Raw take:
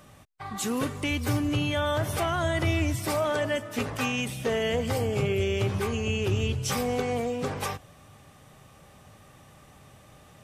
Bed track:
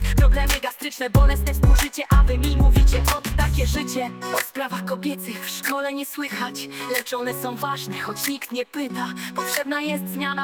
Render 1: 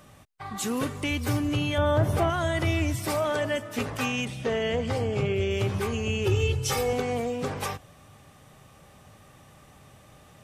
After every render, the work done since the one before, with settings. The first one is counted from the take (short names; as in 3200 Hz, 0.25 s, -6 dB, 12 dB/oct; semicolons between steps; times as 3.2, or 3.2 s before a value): 1.78–2.3 tilt shelf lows +6.5 dB, about 1300 Hz; 4.25–5.51 air absorption 64 m; 6.25–6.93 comb 2.3 ms, depth 74%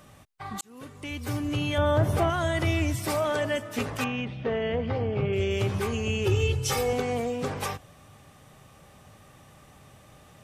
0.61–1.77 fade in; 4.04–5.33 air absorption 300 m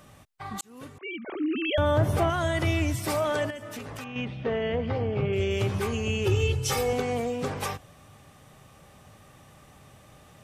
0.98–1.78 sine-wave speech; 3.5–4.16 compressor 10:1, threshold -34 dBFS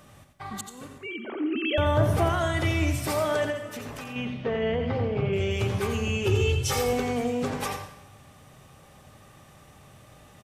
echo 86 ms -8 dB; plate-style reverb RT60 0.84 s, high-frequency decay 0.85×, pre-delay 80 ms, DRR 11.5 dB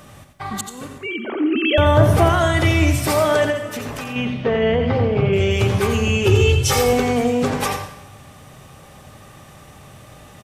gain +9 dB